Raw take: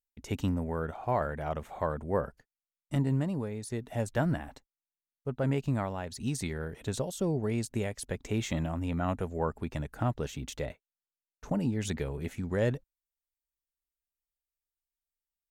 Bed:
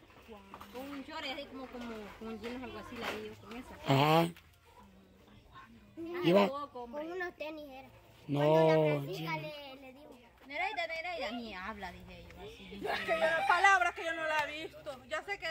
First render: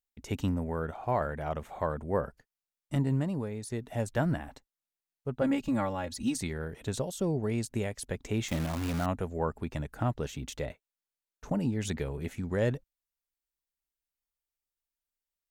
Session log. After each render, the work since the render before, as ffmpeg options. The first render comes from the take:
-filter_complex "[0:a]asettb=1/sr,asplit=3[a][b][c];[a]atrim=end=5.414[d];[b]atrim=start=5.41:end=6.38,asetpts=PTS-STARTPTS,afade=t=in:d=0.004:c=qsin,afade=t=out:st=0.966:d=0.004:c=qsin,aecho=1:1:3.6:0.93,atrim=end_sample=42777[e];[c]atrim=start=6.376[f];[d][e]acrossfade=d=0.004:c1=hsin:c2=qsin[g];[g][f]acrossfade=d=0.004:c1=qsin:c2=hsin,asettb=1/sr,asplit=3[h][i][j];[h]atrim=end=8.484[k];[i]atrim=start=8.48:end=9.06,asetpts=PTS-STARTPTS,afade=t=in:d=0.004:c=qsin,afade=t=out:st=0.576:d=0.004:c=qsin,acrusher=bits=7:dc=4:mix=0:aa=0.000001[l];[j]atrim=start=9.056[m];[k][l]acrossfade=d=0.004:c1=hsin:c2=qsin[n];[n][m]acrossfade=d=0.004:c1=qsin:c2=hsin"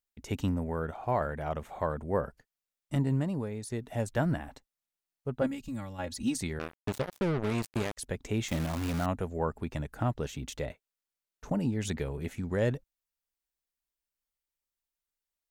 -filter_complex "[0:a]asplit=3[a][b][c];[a]afade=t=out:st=5.46:d=0.02[d];[b]equalizer=f=750:w=0.33:g=-15,afade=t=in:st=5.46:d=0.02,afade=t=out:st=5.98:d=0.02[e];[c]afade=t=in:st=5.98:d=0.02[f];[d][e][f]amix=inputs=3:normalize=0,asettb=1/sr,asplit=3[g][h][i];[g]atrim=end=6.594[j];[h]atrim=start=6.59:end=7.97,asetpts=PTS-STARTPTS,afade=t=in:d=0.004:c=qsin,afade=t=out:st=1.376:d=0.004:c=qsin,acrusher=bits=4:mix=0:aa=0.5[k];[i]atrim=start=7.966[l];[j][k]acrossfade=d=0.004:c1=hsin:c2=qsin[m];[m][l]acrossfade=d=0.004:c1=qsin:c2=hsin"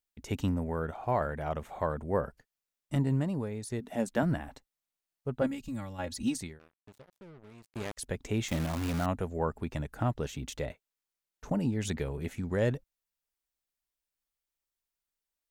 -filter_complex "[0:a]asettb=1/sr,asplit=3[a][b][c];[a]atrim=end=3.804[d];[b]atrim=start=3.8:end=4.23,asetpts=PTS-STARTPTS,afade=t=in:d=0.004:c=qsin,afade=t=out:st=0.426:d=0.004:c=qsin,lowshelf=f=150:t=q:w=3:g=-9[e];[c]atrim=start=4.226[f];[d][e]acrossfade=d=0.004:c1=hsin:c2=qsin[g];[g][f]acrossfade=d=0.004:c1=qsin:c2=hsin,asplit=3[h][i][j];[h]atrim=end=6.59,asetpts=PTS-STARTPTS,afade=t=out:st=6.28:d=0.31:silence=0.0794328[k];[i]atrim=start=6.59:end=7.67,asetpts=PTS-STARTPTS,volume=-22dB[l];[j]atrim=start=7.67,asetpts=PTS-STARTPTS,afade=t=in:d=0.31:silence=0.0794328[m];[k][l][m]concat=n=3:v=0:a=1"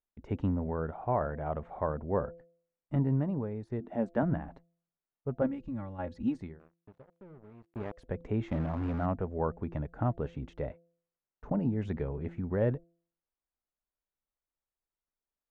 -af "lowpass=1.3k,bandreject=f=169.4:t=h:w=4,bandreject=f=338.8:t=h:w=4,bandreject=f=508.2:t=h:w=4,bandreject=f=677.6:t=h:w=4"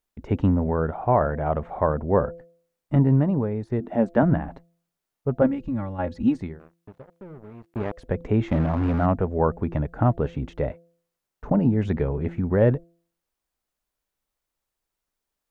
-af "volume=10dB"

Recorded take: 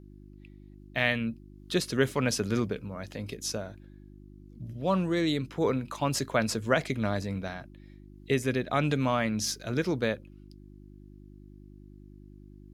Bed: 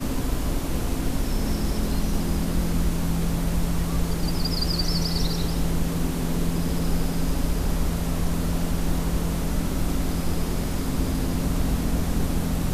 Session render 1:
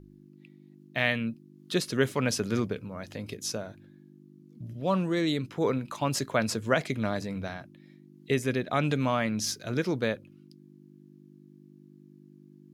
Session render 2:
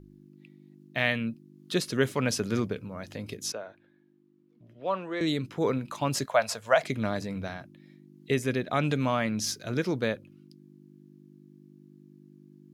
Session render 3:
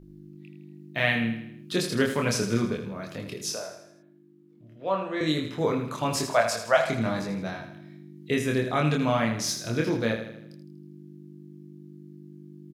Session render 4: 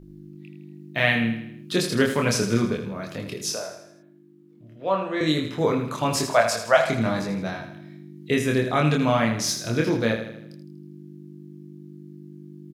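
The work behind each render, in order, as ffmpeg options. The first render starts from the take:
-af "bandreject=f=50:t=h:w=4,bandreject=f=100:t=h:w=4"
-filter_complex "[0:a]asettb=1/sr,asplit=3[a][b][c];[a]atrim=end=3.524[d];[b]atrim=start=3.52:end=5.21,asetpts=PTS-STARTPTS,afade=t=in:d=0.004:c=qsin,afade=t=out:st=1.686:d=0.004:c=qsin,acrossover=split=380 3400:gain=0.141 1 0.141[e][f][g];[e][f][g]amix=inputs=3:normalize=0[h];[c]atrim=start=5.206[i];[d][h]acrossfade=d=0.004:c1=hsin:c2=qsin[j];[j][i]acrossfade=d=0.004:c1=qsin:c2=hsin,asettb=1/sr,asplit=3[k][l][m];[k]atrim=end=6.264[n];[l]atrim=start=6.26:end=6.83,asetpts=PTS-STARTPTS,afade=t=in:d=0.004:c=qsin,afade=t=out:st=0.566:d=0.004:c=qsin,lowshelf=f=470:t=q:w=3:g=-11.5[o];[m]atrim=start=6.826[p];[n][o]acrossfade=d=0.004:c1=hsin:c2=qsin[q];[q][p]acrossfade=d=0.004:c1=qsin:c2=hsin"
-filter_complex "[0:a]asplit=2[a][b];[b]adelay=26,volume=-2.5dB[c];[a][c]amix=inputs=2:normalize=0,aecho=1:1:80|160|240|320|400|480:0.355|0.174|0.0852|0.0417|0.0205|0.01"
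-af "volume=3.5dB"

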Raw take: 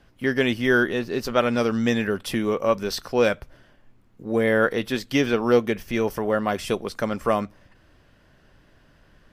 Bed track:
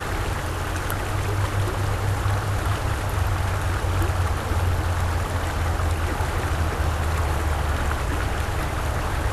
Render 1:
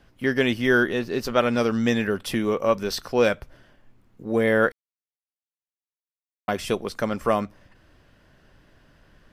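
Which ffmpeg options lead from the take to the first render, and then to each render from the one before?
-filter_complex "[0:a]asplit=3[a][b][c];[a]atrim=end=4.72,asetpts=PTS-STARTPTS,afade=t=out:st=4.716:d=0.004:c=hsin[d];[b]atrim=start=4.72:end=6.48,asetpts=PTS-STARTPTS,volume=0[e];[c]atrim=start=6.48,asetpts=PTS-STARTPTS,afade=t=in:d=0.004:c=hsin[f];[d][e][f]concat=n=3:v=0:a=1"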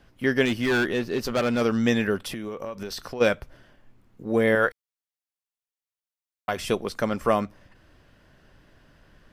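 -filter_complex "[0:a]asettb=1/sr,asplit=3[a][b][c];[a]atrim=end=0.454[d];[b]atrim=start=0.45:end=1.62,asetpts=PTS-STARTPTS,afade=t=in:d=0.004:c=qsin,afade=t=out:st=1.166:d=0.004:c=qsin,asoftclip=type=hard:threshold=-19.5dB[e];[c]atrim=start=1.616[f];[d][e]acrossfade=d=0.004:c1=hsin:c2=qsin[g];[g][f]acrossfade=d=0.004:c1=qsin:c2=hsin,asplit=3[h][i][j];[h]afade=t=out:st=2.18:d=0.02[k];[i]acompressor=threshold=-29dB:ratio=20:attack=3.2:release=140:knee=1:detection=peak,afade=t=in:st=2.18:d=0.02,afade=t=out:st=3.2:d=0.02[l];[j]afade=t=in:st=3.2:d=0.02[m];[k][l][m]amix=inputs=3:normalize=0,asettb=1/sr,asplit=3[n][o][p];[n]atrim=end=4.554[q];[o]atrim=start=4.55:end=6.57,asetpts=PTS-STARTPTS,afade=t=in:d=0.004:c=qsin,afade=t=out:st=2.016:d=0.004:c=qsin,equalizer=f=240:t=o:w=1.5:g=-9[r];[p]atrim=start=6.566[s];[q][r]acrossfade=d=0.004:c1=hsin:c2=qsin[t];[t][s]acrossfade=d=0.004:c1=qsin:c2=hsin"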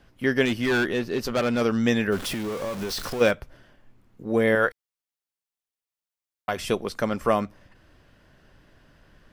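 -filter_complex "[0:a]asettb=1/sr,asplit=3[a][b][c];[a]atrim=end=2.124[d];[b]atrim=start=2.12:end=3.31,asetpts=PTS-STARTPTS,afade=t=in:d=0.004:c=qsin,afade=t=out:st=1.186:d=0.004:c=qsin,aeval=exprs='val(0)+0.5*0.0299*sgn(val(0))':c=same[e];[c]atrim=start=3.306[f];[d][e]acrossfade=d=0.004:c1=hsin:c2=qsin[g];[g][f]acrossfade=d=0.004:c1=qsin:c2=hsin"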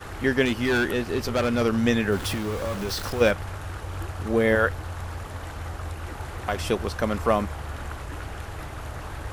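-filter_complex "[1:a]volume=-10.5dB[a];[0:a][a]amix=inputs=2:normalize=0"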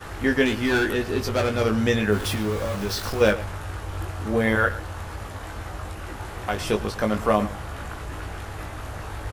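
-filter_complex "[0:a]asplit=2[a][b];[b]adelay=19,volume=-4.5dB[c];[a][c]amix=inputs=2:normalize=0,asplit=2[d][e];[e]adelay=110.8,volume=-16dB,highshelf=f=4k:g=-2.49[f];[d][f]amix=inputs=2:normalize=0"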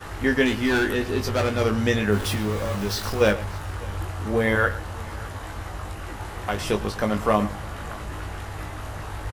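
-filter_complex "[0:a]asplit=2[a][b];[b]adelay=20,volume=-12dB[c];[a][c]amix=inputs=2:normalize=0,aecho=1:1:602:0.075"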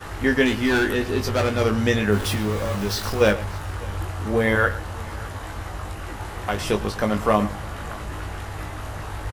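-af "volume=1.5dB"

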